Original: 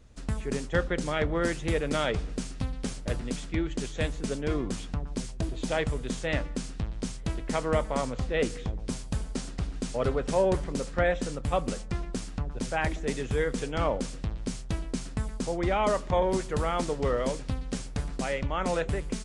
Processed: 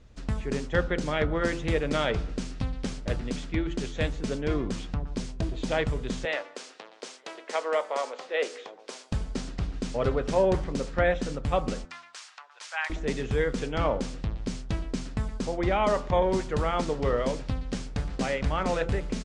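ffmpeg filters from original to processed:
ffmpeg -i in.wav -filter_complex "[0:a]asettb=1/sr,asplit=3[link_01][link_02][link_03];[link_01]atrim=end=6.254[link_04];[link_02]atrim=start=6.25:end=9.12,asetpts=PTS-STARTPTS,afade=type=in:duration=0.004:curve=qsin,afade=type=out:start_time=2.866:duration=0.004:curve=qsin,highpass=frequency=430:width=0.5412,highpass=frequency=430:width=1.3066[link_05];[link_03]atrim=start=9.116[link_06];[link_04][link_05]acrossfade=duration=0.004:curve1=hsin:curve2=qsin[link_07];[link_07][link_06]acrossfade=duration=0.004:curve1=qsin:curve2=hsin,asettb=1/sr,asplit=3[link_08][link_09][link_10];[link_08]atrim=end=11.854[link_11];[link_09]atrim=start=11.85:end=12.9,asetpts=PTS-STARTPTS,afade=type=in:duration=0.004:curve=qsin,afade=type=out:start_time=1.046:duration=0.004:curve=qsin,highpass=frequency=970:width=0.5412,highpass=frequency=970:width=1.3066[link_12];[link_10]atrim=start=12.896[link_13];[link_11][link_12]acrossfade=duration=0.004:curve1=hsin:curve2=qsin[link_14];[link_14][link_13]acrossfade=duration=0.004:curve1=qsin:curve2=hsin,asplit=2[link_15][link_16];[link_16]afade=type=in:start_time=17.62:duration=0.01,afade=type=out:start_time=18.15:duration=0.01,aecho=0:1:480|960|1440|1920|2400|2880|3360:0.891251|0.445625|0.222813|0.111406|0.0557032|0.0278516|0.0139258[link_17];[link_15][link_17]amix=inputs=2:normalize=0,lowpass=5900,bandreject=frequency=84.69:width_type=h:width=4,bandreject=frequency=169.38:width_type=h:width=4,bandreject=frequency=254.07:width_type=h:width=4,bandreject=frequency=338.76:width_type=h:width=4,bandreject=frequency=423.45:width_type=h:width=4,bandreject=frequency=508.14:width_type=h:width=4,bandreject=frequency=592.83:width_type=h:width=4,bandreject=frequency=677.52:width_type=h:width=4,bandreject=frequency=762.21:width_type=h:width=4,bandreject=frequency=846.9:width_type=h:width=4,bandreject=frequency=931.59:width_type=h:width=4,bandreject=frequency=1016.28:width_type=h:width=4,bandreject=frequency=1100.97:width_type=h:width=4,bandreject=frequency=1185.66:width_type=h:width=4,bandreject=frequency=1270.35:width_type=h:width=4,bandreject=frequency=1355.04:width_type=h:width=4,bandreject=frequency=1439.73:width_type=h:width=4,bandreject=frequency=1524.42:width_type=h:width=4,volume=1.5dB" out.wav

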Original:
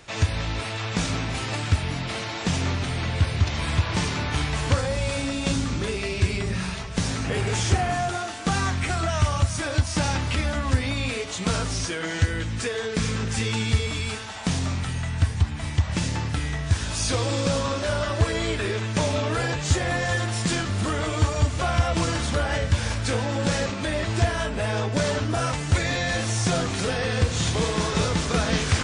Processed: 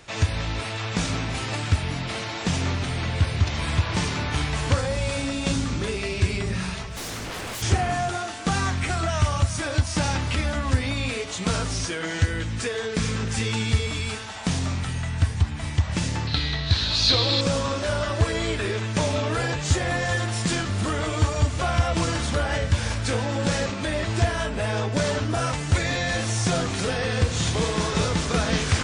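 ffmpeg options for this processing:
ffmpeg -i in.wav -filter_complex "[0:a]asplit=3[link_01][link_02][link_03];[link_01]afade=type=out:start_time=6.88:duration=0.02[link_04];[link_02]aeval=exprs='0.0398*(abs(mod(val(0)/0.0398+3,4)-2)-1)':channel_layout=same,afade=type=in:start_time=6.88:duration=0.02,afade=type=out:start_time=7.61:duration=0.02[link_05];[link_03]afade=type=in:start_time=7.61:duration=0.02[link_06];[link_04][link_05][link_06]amix=inputs=3:normalize=0,asettb=1/sr,asplit=3[link_07][link_08][link_09];[link_07]atrim=end=16.274[link_10];[link_08]atrim=start=16.27:end=17.41,asetpts=PTS-STARTPTS,afade=type=in:duration=0.004:curve=qsin,afade=type=out:start_time=1.136:duration=0.004:curve=qsin,lowpass=frequency=4100:width_type=q:width=9.4[link_11];[link_09]atrim=start=17.406[link_12];[link_10][link_11]acrossfade=duration=0.004:curve1=hsin:curve2=qsin[link_13];[link_13][link_12]acrossfade=duration=0.004:curve1=qsin:curve2=hsin" out.wav

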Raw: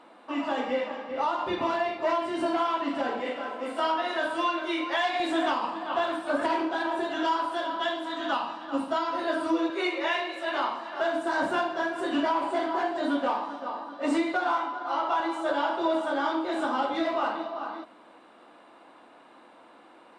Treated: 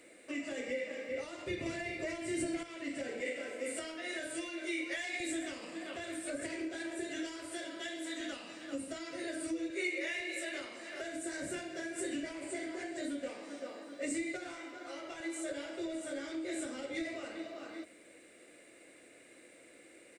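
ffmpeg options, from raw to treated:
ffmpeg -i in.wav -filter_complex "[0:a]asplit=3[link_01][link_02][link_03];[link_01]atrim=end=1.662[link_04];[link_02]atrim=start=1.658:end=2.632,asetpts=PTS-STARTPTS,volume=7.5dB[link_05];[link_03]atrim=start=2.628[link_06];[link_04][link_05]acrossfade=duration=0.004:curve1=hsin:curve2=hsin[link_07];[link_07][link_06]acrossfade=duration=0.004:curve1=hsin:curve2=hsin,equalizer=frequency=850:width_type=o:width=1.6:gain=-5,acrossover=split=170[link_08][link_09];[link_09]acompressor=threshold=-35dB:ratio=6[link_10];[link_08][link_10]amix=inputs=2:normalize=0,firequalizer=gain_entry='entry(120,0);entry(220,-10);entry(330,-3);entry(540,-1);entry(900,-23);entry(2100,5);entry(3100,-8);entry(7800,14);entry(11000,8)':delay=0.05:min_phase=1,volume=2.5dB" out.wav

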